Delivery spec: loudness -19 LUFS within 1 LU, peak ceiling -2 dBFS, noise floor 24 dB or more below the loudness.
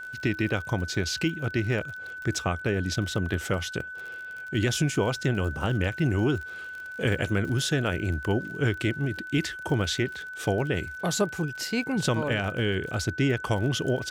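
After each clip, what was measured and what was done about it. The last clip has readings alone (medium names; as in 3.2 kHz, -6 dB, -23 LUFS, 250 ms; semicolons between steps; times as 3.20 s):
tick rate 43 per s; steady tone 1.5 kHz; tone level -36 dBFS; loudness -28.0 LUFS; peak level -12.5 dBFS; loudness target -19.0 LUFS
-> de-click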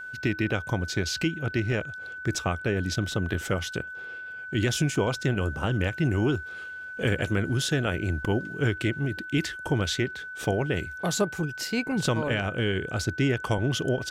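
tick rate 0 per s; steady tone 1.5 kHz; tone level -36 dBFS
-> band-stop 1.5 kHz, Q 30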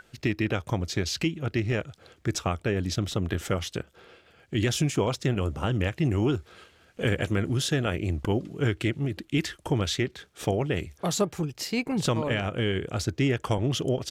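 steady tone not found; loudness -28.0 LUFS; peak level -13.0 dBFS; loudness target -19.0 LUFS
-> trim +9 dB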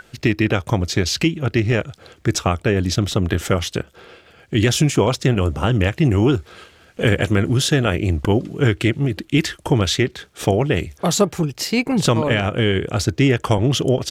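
loudness -19.0 LUFS; peak level -4.0 dBFS; noise floor -52 dBFS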